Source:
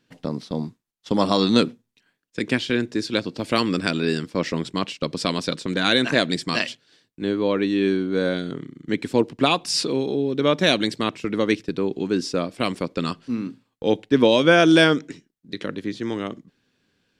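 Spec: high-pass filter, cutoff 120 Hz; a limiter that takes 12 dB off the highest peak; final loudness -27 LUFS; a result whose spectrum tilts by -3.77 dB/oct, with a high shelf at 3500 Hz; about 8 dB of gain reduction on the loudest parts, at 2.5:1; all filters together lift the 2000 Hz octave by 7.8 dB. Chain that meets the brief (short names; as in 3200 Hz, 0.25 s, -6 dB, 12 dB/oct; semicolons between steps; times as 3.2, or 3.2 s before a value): HPF 120 Hz; bell 2000 Hz +8.5 dB; high shelf 3500 Hz +7 dB; compressor 2.5:1, threshold -19 dBFS; gain -0.5 dB; limiter -14 dBFS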